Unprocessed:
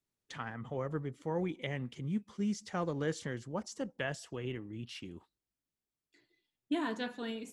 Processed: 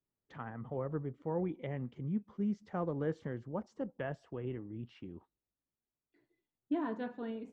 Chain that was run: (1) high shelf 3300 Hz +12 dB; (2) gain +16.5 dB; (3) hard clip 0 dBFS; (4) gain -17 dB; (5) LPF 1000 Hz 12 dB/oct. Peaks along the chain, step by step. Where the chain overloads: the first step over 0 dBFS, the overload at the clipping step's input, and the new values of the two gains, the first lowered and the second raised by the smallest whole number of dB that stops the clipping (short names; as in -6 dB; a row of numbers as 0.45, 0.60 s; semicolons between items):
-19.0, -2.5, -2.5, -19.5, -22.5 dBFS; no overload